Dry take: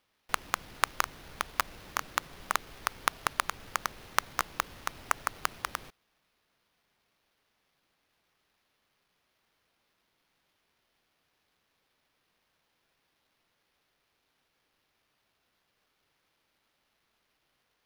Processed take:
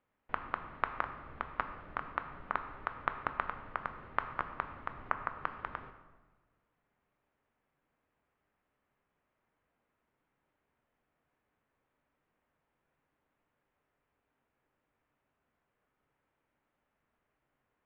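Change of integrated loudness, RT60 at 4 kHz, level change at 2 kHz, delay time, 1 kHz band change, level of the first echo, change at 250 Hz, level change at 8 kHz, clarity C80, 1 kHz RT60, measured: -5.5 dB, 0.90 s, -6.0 dB, none, -3.5 dB, none, -1.0 dB, under -40 dB, 11.0 dB, 1.2 s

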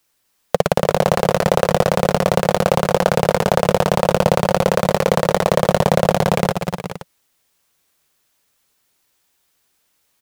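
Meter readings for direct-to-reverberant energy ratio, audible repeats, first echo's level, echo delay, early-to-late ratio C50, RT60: none, 3, -7.0 dB, 0.249 s, none, none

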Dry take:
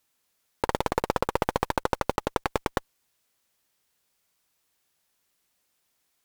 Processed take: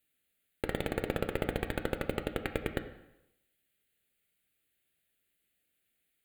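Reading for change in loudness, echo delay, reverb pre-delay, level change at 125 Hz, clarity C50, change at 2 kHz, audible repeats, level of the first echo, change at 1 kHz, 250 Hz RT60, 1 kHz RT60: -6.5 dB, none, 5 ms, -2.5 dB, 10.5 dB, -4.5 dB, none, none, -14.5 dB, 0.85 s, 0.85 s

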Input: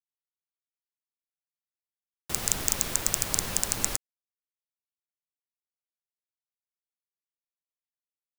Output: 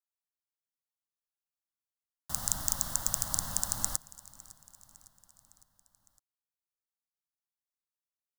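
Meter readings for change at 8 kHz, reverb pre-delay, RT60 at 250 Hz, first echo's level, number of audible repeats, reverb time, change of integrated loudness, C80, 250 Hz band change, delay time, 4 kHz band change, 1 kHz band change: -4.0 dB, none, none, -21.0 dB, 3, none, -4.0 dB, none, -7.5 dB, 0.557 s, -7.0 dB, -3.5 dB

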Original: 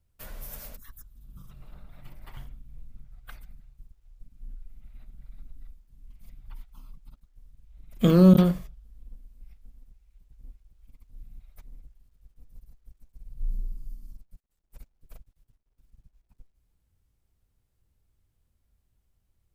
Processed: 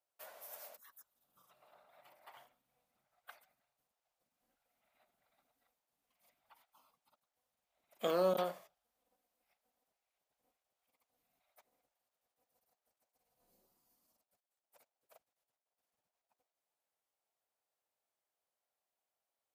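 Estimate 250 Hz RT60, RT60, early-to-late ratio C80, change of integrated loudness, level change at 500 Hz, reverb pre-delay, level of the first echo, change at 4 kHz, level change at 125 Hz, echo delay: none, none, none, -15.0 dB, -8.0 dB, none, none, -8.0 dB, -31.0 dB, none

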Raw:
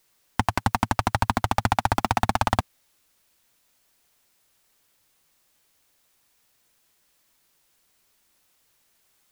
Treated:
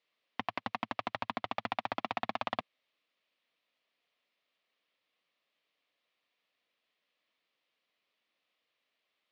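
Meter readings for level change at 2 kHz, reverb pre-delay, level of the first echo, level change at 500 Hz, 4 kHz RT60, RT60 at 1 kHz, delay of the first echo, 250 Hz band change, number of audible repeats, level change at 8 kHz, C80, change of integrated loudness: -11.0 dB, none, none, -9.5 dB, none, none, none, -14.5 dB, none, under -25 dB, none, -13.0 dB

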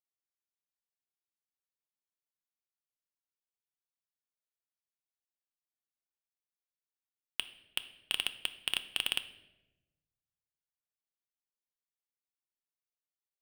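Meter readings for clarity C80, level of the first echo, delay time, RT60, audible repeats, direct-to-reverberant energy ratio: 16.5 dB, none, none, 1.0 s, none, 9.5 dB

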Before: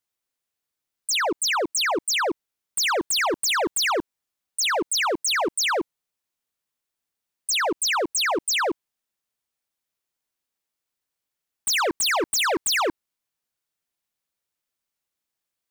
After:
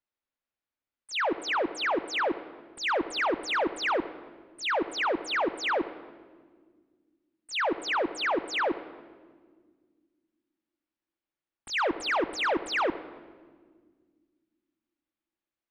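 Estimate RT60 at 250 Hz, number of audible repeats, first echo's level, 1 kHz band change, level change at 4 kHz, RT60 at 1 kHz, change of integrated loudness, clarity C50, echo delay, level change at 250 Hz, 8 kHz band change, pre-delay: 2.9 s, none, none, -3.5 dB, -9.5 dB, 1.4 s, -6.0 dB, 14.5 dB, none, -2.0 dB, -20.5 dB, 3 ms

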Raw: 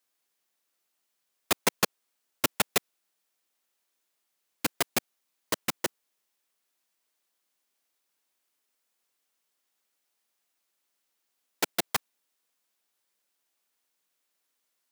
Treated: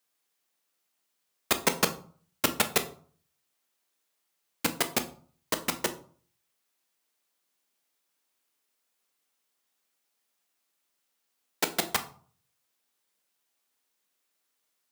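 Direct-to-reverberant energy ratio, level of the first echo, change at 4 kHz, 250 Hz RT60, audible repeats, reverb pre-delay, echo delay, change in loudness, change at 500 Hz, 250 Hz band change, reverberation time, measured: 7.5 dB, none, +0.5 dB, 0.55 s, none, 4 ms, none, +0.5 dB, +1.0 dB, +1.5 dB, 0.45 s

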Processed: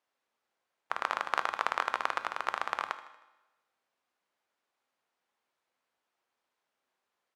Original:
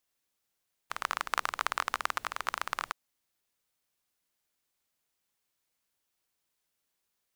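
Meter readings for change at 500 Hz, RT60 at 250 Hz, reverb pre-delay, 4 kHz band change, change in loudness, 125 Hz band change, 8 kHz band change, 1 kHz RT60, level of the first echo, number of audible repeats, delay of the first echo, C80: +5.0 dB, 1.1 s, 4 ms, -3.0 dB, +0.5 dB, n/a, -9.0 dB, 1.0 s, -16.5 dB, 4, 78 ms, 14.5 dB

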